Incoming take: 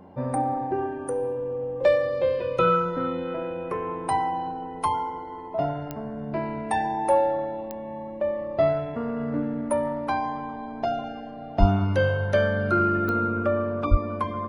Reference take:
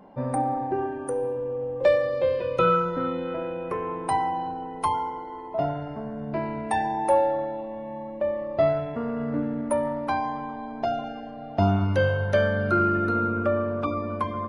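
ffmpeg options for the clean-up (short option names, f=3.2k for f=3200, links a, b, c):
-filter_complex "[0:a]adeclick=t=4,bandreject=f=90.5:t=h:w=4,bandreject=f=181:t=h:w=4,bandreject=f=271.5:t=h:w=4,bandreject=f=362:t=h:w=4,bandreject=f=452.5:t=h:w=4,asplit=3[a][b][c];[a]afade=t=out:st=11.59:d=0.02[d];[b]highpass=f=140:w=0.5412,highpass=f=140:w=1.3066,afade=t=in:st=11.59:d=0.02,afade=t=out:st=11.71:d=0.02[e];[c]afade=t=in:st=11.71:d=0.02[f];[d][e][f]amix=inputs=3:normalize=0,asplit=3[g][h][i];[g]afade=t=out:st=13.9:d=0.02[j];[h]highpass=f=140:w=0.5412,highpass=f=140:w=1.3066,afade=t=in:st=13.9:d=0.02,afade=t=out:st=14.02:d=0.02[k];[i]afade=t=in:st=14.02:d=0.02[l];[j][k][l]amix=inputs=3:normalize=0"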